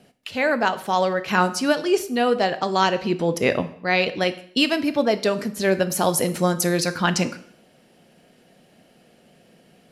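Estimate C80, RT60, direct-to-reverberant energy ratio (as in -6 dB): 18.0 dB, 0.60 s, 11.0 dB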